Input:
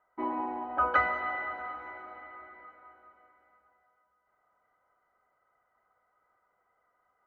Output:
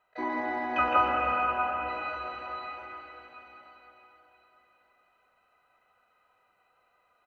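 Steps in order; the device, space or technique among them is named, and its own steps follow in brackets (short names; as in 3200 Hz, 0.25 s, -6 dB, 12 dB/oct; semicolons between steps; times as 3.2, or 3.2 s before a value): 0.88–1.9 steep low-pass 1400 Hz 72 dB/oct; shimmer-style reverb (harmoniser +12 st -8 dB; reverb RT60 4.1 s, pre-delay 0.116 s, DRR -2 dB); feedback echo 0.328 s, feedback 58%, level -12.5 dB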